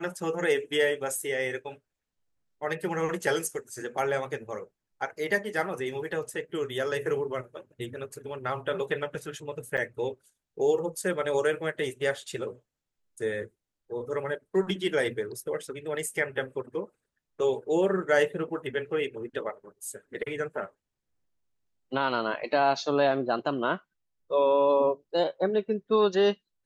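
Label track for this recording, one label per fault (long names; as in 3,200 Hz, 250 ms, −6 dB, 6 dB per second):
9.770000	9.780000	drop-out 7.9 ms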